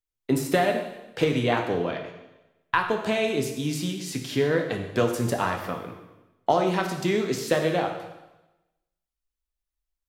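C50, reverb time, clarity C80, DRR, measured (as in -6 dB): 6.0 dB, 1.0 s, 8.5 dB, 3.0 dB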